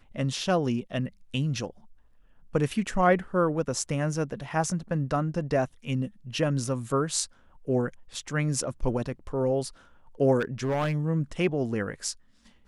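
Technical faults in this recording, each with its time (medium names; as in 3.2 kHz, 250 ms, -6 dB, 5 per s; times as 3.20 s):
10.39–10.95 s: clipped -23 dBFS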